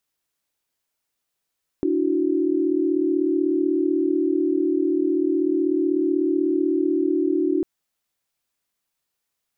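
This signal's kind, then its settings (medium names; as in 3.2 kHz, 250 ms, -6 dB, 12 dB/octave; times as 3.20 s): chord D4/E4/F#4 sine, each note -22.5 dBFS 5.80 s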